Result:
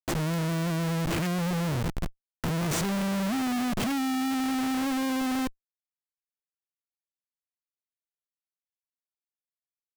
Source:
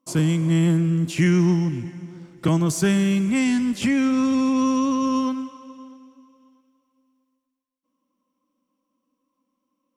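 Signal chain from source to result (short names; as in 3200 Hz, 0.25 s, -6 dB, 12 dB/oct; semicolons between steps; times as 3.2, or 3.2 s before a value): recorder AGC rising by 6.6 dB/s; low shelf 200 Hz +2 dB; Schmitt trigger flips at -27.5 dBFS; gain -5.5 dB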